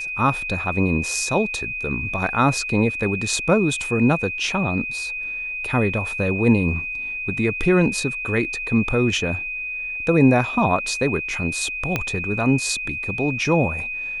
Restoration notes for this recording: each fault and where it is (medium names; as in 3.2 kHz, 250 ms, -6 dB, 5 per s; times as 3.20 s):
whine 2.5 kHz -26 dBFS
11.96 s: pop -7 dBFS